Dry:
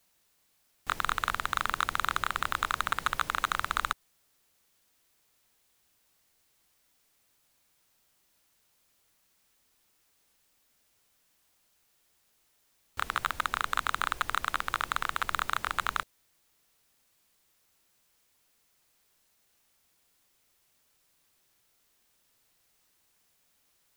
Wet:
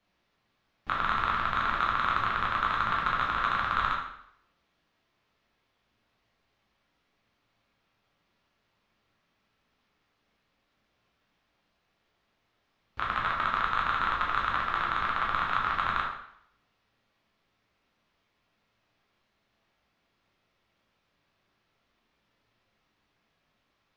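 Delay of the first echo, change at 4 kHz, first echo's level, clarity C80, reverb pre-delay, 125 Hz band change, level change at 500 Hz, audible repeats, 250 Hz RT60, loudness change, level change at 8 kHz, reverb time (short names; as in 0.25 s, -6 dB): none, -2.0 dB, none, 7.0 dB, 5 ms, +5.5 dB, +4.0 dB, none, 0.70 s, +3.0 dB, under -15 dB, 0.70 s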